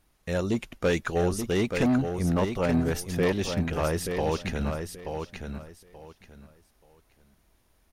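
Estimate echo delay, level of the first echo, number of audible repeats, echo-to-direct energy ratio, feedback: 0.88 s, -6.5 dB, 3, -6.5 dB, 22%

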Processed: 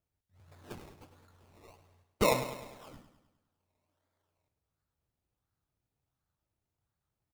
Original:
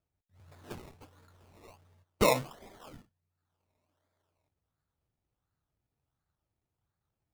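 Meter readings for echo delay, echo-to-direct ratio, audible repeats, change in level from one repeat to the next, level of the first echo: 0.102 s, -9.5 dB, 5, -5.5 dB, -11.0 dB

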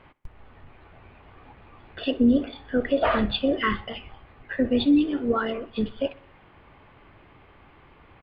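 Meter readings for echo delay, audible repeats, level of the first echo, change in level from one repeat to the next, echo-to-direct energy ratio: 63 ms, 3, -23.0 dB, -5.0 dB, -21.5 dB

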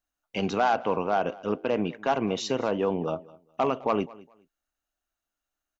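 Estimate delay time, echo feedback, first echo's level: 0.207 s, 22%, -21.5 dB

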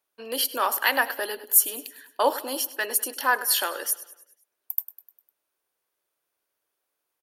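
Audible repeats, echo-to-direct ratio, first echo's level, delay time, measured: 4, -15.5 dB, -17.0 dB, 0.101 s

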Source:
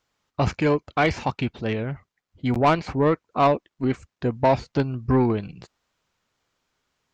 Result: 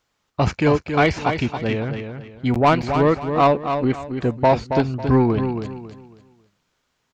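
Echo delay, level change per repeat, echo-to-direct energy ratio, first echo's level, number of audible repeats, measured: 0.274 s, -10.5 dB, -7.0 dB, -7.5 dB, 3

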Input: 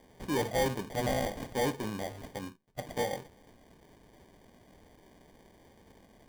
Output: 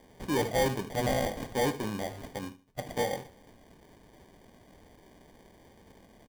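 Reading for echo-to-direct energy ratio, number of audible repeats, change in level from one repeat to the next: -16.5 dB, 2, -11.0 dB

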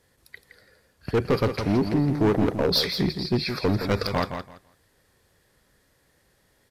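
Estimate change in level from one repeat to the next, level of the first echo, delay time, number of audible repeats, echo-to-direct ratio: -14.5 dB, -8.0 dB, 0.167 s, 2, -8.0 dB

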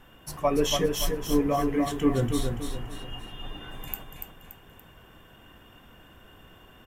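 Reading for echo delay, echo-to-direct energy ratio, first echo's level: 0.286 s, -5.0 dB, -5.5 dB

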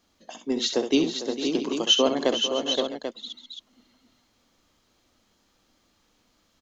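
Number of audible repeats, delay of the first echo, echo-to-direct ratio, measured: 5, 65 ms, -2.5 dB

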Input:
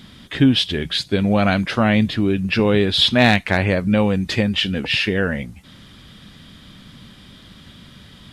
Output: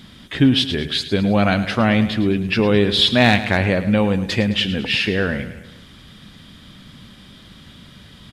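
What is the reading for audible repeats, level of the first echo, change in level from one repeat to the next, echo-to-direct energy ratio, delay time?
4, -13.0 dB, -5.5 dB, -11.5 dB, 0.107 s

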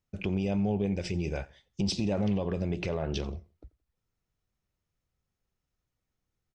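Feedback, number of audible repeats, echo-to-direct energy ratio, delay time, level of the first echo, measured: 34%, 2, -22.5 dB, 86 ms, -23.0 dB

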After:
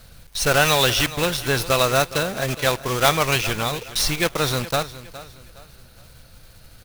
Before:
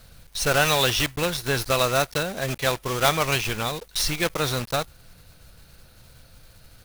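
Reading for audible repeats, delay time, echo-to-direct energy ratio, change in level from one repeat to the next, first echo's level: 3, 0.414 s, -15.5 dB, -9.5 dB, -16.0 dB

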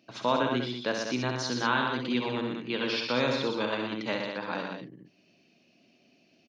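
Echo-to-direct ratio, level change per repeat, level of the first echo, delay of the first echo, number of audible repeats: -1.5 dB, no steady repeat, -6.0 dB, 65 ms, 3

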